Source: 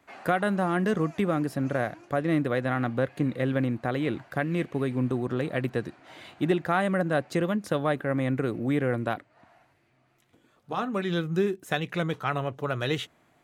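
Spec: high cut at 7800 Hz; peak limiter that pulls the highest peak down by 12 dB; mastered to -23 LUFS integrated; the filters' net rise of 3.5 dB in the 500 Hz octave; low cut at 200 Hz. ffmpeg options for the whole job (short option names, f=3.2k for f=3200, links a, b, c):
-af "highpass=200,lowpass=7.8k,equalizer=f=500:t=o:g=4.5,volume=8dB,alimiter=limit=-12dB:level=0:latency=1"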